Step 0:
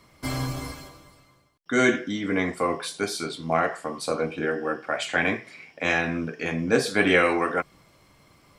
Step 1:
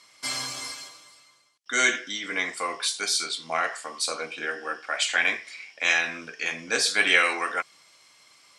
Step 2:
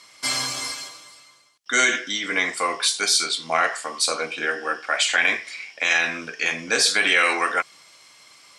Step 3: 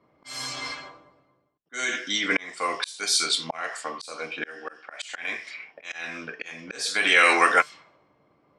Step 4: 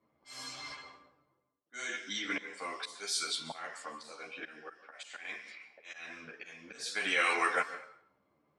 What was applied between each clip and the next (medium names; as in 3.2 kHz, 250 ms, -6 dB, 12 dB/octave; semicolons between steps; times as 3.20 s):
frequency weighting ITU-R 468; trim -3 dB
peak limiter -13.5 dBFS, peak gain reduction 7 dB; trim +6 dB
feedback comb 150 Hz, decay 0.16 s, harmonics all, mix 30%; level-controlled noise filter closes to 410 Hz, open at -22.5 dBFS; slow attack 681 ms; trim +6 dB
plate-style reverb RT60 0.62 s, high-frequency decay 0.65×, pre-delay 120 ms, DRR 12.5 dB; three-phase chorus; trim -8 dB